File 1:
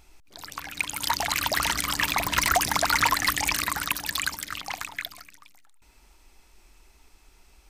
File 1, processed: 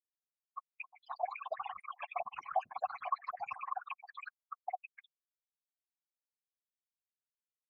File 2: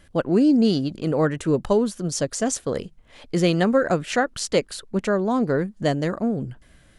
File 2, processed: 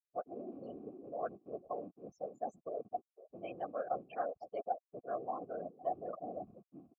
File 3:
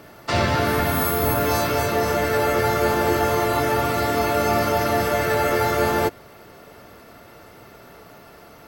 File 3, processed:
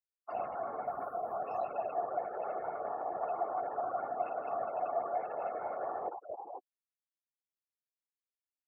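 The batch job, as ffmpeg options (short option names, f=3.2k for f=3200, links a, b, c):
-filter_complex "[0:a]asplit=2[a][b];[b]adelay=508,lowpass=f=2.5k:p=1,volume=-12dB,asplit=2[c][d];[d]adelay=508,lowpass=f=2.5k:p=1,volume=0.3,asplit=2[e][f];[f]adelay=508,lowpass=f=2.5k:p=1,volume=0.3[g];[c][e][g]amix=inputs=3:normalize=0[h];[a][h]amix=inputs=2:normalize=0,afftfilt=real='re*gte(hypot(re,im),0.141)':imag='im*gte(hypot(re,im),0.141)':win_size=1024:overlap=0.75,areverse,acompressor=threshold=-31dB:ratio=6,areverse,afftfilt=real='hypot(re,im)*cos(2*PI*random(0))':imag='hypot(re,im)*sin(2*PI*random(1))':win_size=512:overlap=0.75,acrossover=split=2600[i][j];[j]acompressor=threshold=-55dB:ratio=4:attack=1:release=60[k];[i][k]amix=inputs=2:normalize=0,asplit=3[l][m][n];[l]bandpass=f=730:t=q:w=8,volume=0dB[o];[m]bandpass=f=1.09k:t=q:w=8,volume=-6dB[p];[n]bandpass=f=2.44k:t=q:w=8,volume=-9dB[q];[o][p][q]amix=inputs=3:normalize=0,volume=11.5dB"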